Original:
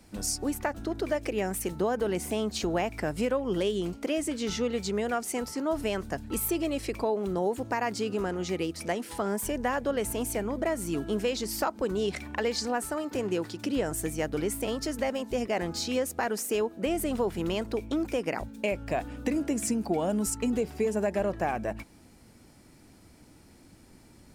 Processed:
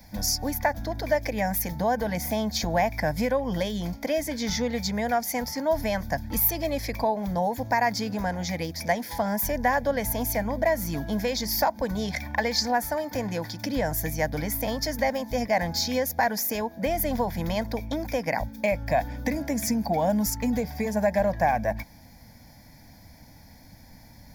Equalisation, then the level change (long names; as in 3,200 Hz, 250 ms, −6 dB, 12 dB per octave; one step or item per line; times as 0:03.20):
high-shelf EQ 11,000 Hz +11 dB
phaser with its sweep stopped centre 1,900 Hz, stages 8
notch filter 4,000 Hz, Q 9.1
+8.0 dB